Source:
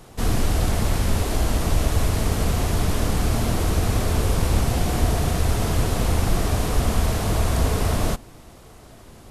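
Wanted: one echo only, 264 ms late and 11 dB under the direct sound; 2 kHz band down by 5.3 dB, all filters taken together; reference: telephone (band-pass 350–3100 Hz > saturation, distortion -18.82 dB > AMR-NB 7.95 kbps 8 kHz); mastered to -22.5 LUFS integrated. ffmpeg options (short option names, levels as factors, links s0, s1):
-af "highpass=350,lowpass=3100,equalizer=f=2000:t=o:g=-6,aecho=1:1:264:0.282,asoftclip=threshold=0.0631,volume=3.76" -ar 8000 -c:a libopencore_amrnb -b:a 7950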